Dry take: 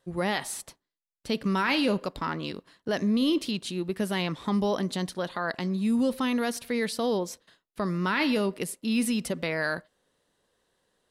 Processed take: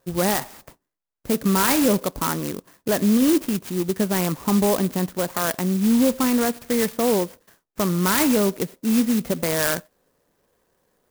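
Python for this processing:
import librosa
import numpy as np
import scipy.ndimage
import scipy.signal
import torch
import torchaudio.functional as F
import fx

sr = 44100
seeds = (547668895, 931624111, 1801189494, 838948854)

y = scipy.signal.savgol_filter(x, 25, 4, mode='constant')
y = fx.clock_jitter(y, sr, seeds[0], jitter_ms=0.1)
y = y * librosa.db_to_amplitude(7.0)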